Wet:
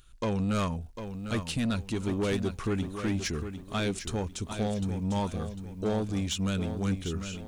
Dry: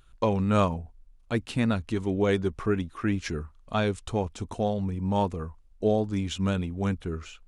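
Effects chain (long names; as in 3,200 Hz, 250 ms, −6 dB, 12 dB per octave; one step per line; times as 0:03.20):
drawn EQ curve 290 Hz 0 dB, 730 Hz −5 dB, 6,000 Hz +7 dB
soft clipping −23.5 dBFS, distortion −12 dB
feedback echo at a low word length 750 ms, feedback 35%, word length 10 bits, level −9 dB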